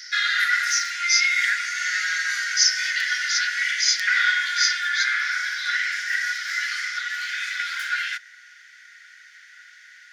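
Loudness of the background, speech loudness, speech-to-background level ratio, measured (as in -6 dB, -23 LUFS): -23.0 LUFS, -24.5 LUFS, -1.5 dB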